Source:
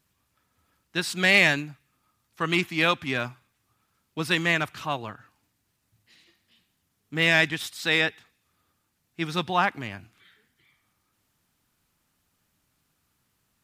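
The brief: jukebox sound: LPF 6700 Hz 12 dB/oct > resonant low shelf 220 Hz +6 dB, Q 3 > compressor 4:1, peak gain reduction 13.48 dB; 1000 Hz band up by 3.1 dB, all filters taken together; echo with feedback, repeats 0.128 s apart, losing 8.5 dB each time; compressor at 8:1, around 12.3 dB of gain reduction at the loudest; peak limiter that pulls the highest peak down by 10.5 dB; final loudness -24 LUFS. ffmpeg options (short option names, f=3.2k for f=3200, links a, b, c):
-af "equalizer=f=1k:t=o:g=4.5,acompressor=threshold=-26dB:ratio=8,alimiter=level_in=0.5dB:limit=-24dB:level=0:latency=1,volume=-0.5dB,lowpass=6.7k,lowshelf=f=220:t=q:w=3:g=6,aecho=1:1:128|256|384|512:0.376|0.143|0.0543|0.0206,acompressor=threshold=-39dB:ratio=4,volume=18.5dB"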